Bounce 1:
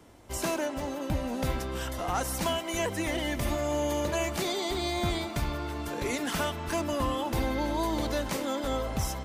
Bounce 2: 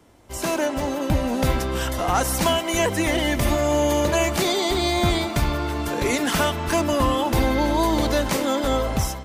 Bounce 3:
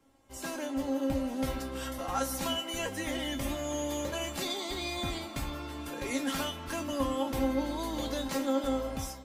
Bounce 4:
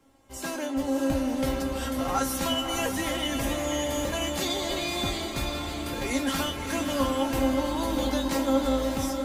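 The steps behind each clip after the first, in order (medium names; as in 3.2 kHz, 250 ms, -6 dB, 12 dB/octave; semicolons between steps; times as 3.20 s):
level rider gain up to 9 dB
feedback comb 270 Hz, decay 0.22 s, harmonics all, mix 90%
echo that smears into a reverb 603 ms, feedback 44%, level -5.5 dB; trim +4.5 dB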